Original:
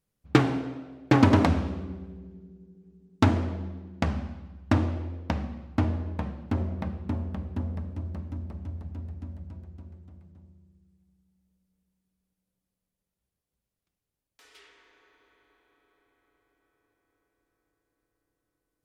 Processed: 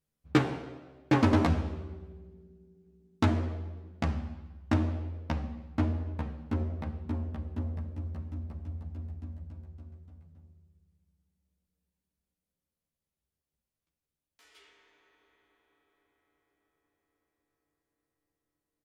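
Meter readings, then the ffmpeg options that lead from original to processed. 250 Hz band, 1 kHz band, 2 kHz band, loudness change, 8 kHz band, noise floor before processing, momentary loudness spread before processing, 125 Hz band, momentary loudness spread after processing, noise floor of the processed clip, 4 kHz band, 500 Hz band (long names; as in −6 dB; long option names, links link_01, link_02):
−4.5 dB, −4.5 dB, −4.5 dB, −4.0 dB, can't be measured, below −85 dBFS, 19 LU, −3.5 dB, 19 LU, below −85 dBFS, −4.5 dB, −4.0 dB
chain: -filter_complex "[0:a]asplit=2[link_01][link_02];[link_02]adelay=13,volume=-2dB[link_03];[link_01][link_03]amix=inputs=2:normalize=0,volume=-6.5dB"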